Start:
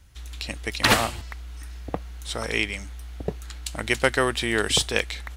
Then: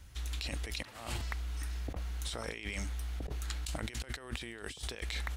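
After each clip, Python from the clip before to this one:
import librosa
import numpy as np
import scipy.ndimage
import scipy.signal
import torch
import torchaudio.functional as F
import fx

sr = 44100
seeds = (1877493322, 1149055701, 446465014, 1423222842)

y = fx.over_compress(x, sr, threshold_db=-35.0, ratio=-1.0)
y = F.gain(torch.from_numpy(y), -5.5).numpy()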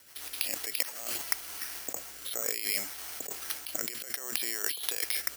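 y = fx.rotary_switch(x, sr, hz=7.0, then_hz=0.65, switch_at_s=0.24)
y = scipy.signal.sosfilt(scipy.signal.butter(2, 470.0, 'highpass', fs=sr, output='sos'), y)
y = (np.kron(scipy.signal.resample_poly(y, 1, 6), np.eye(6)[0]) * 6)[:len(y)]
y = F.gain(torch.from_numpy(y), 7.5).numpy()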